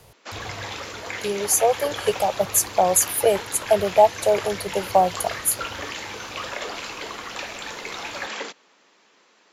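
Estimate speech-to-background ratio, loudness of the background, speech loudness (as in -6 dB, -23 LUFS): 11.0 dB, -32.0 LUFS, -21.0 LUFS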